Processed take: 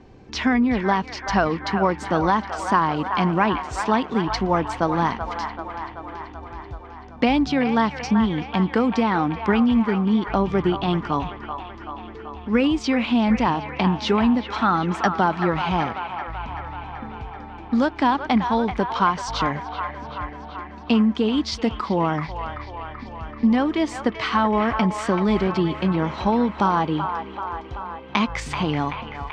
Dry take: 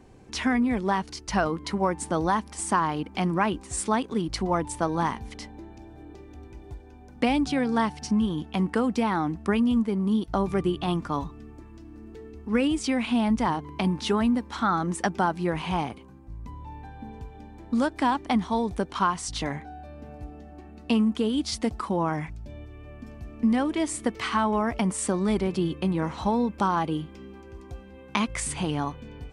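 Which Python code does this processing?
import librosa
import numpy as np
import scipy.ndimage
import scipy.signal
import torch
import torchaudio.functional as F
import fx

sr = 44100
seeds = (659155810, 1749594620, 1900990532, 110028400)

y = (np.kron(scipy.signal.resample_poly(x, 1, 2), np.eye(2)[0]) * 2)[:len(x)]
y = scipy.signal.sosfilt(scipy.signal.butter(4, 5500.0, 'lowpass', fs=sr, output='sos'), y)
y = fx.echo_wet_bandpass(y, sr, ms=383, feedback_pct=68, hz=1400.0, wet_db=-6.0)
y = y * 10.0 ** (4.5 / 20.0)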